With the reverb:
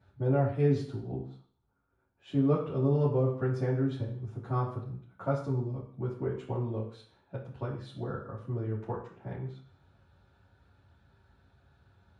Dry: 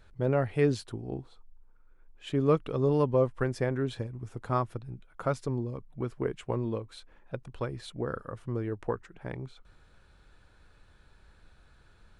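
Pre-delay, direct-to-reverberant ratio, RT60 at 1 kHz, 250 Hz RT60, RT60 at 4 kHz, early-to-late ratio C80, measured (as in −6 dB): 3 ms, −8.0 dB, 0.50 s, 0.50 s, 0.55 s, 10.5 dB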